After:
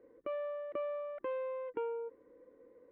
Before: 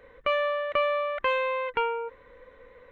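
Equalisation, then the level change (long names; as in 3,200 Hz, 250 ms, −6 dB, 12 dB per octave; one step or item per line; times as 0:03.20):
resonant band-pass 320 Hz, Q 3.9
+3.5 dB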